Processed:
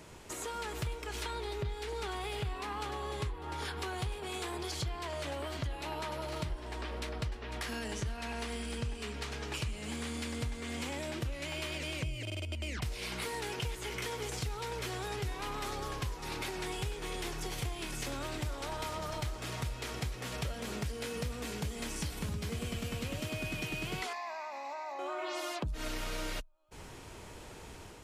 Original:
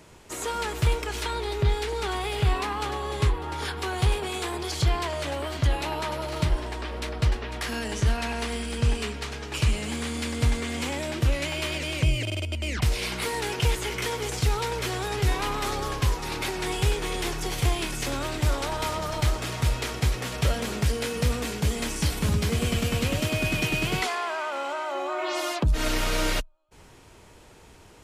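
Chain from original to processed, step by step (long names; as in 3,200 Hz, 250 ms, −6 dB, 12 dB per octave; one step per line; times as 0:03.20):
downward compressor 4 to 1, threshold −40 dBFS, peak gain reduction 18.5 dB
0:24.13–0:24.99: phaser with its sweep stopped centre 2,100 Hz, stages 8
automatic gain control gain up to 3.5 dB
level −1 dB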